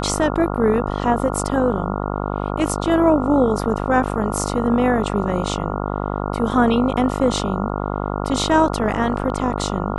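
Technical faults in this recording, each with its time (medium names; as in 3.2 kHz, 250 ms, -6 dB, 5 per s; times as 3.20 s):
buzz 50 Hz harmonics 28 -24 dBFS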